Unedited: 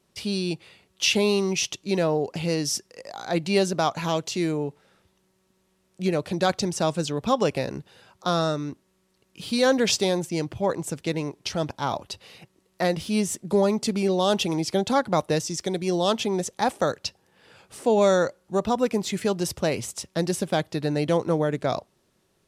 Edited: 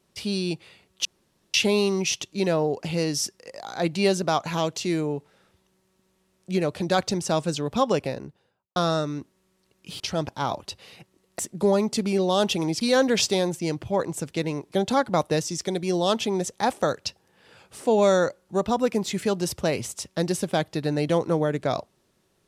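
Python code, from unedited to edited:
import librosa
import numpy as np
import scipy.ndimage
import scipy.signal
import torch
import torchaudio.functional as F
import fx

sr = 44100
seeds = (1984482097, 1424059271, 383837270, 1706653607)

y = fx.studio_fade_out(x, sr, start_s=7.33, length_s=0.94)
y = fx.edit(y, sr, fx.insert_room_tone(at_s=1.05, length_s=0.49),
    fx.move(start_s=9.51, length_s=1.91, to_s=14.71),
    fx.cut(start_s=12.81, length_s=0.48), tone=tone)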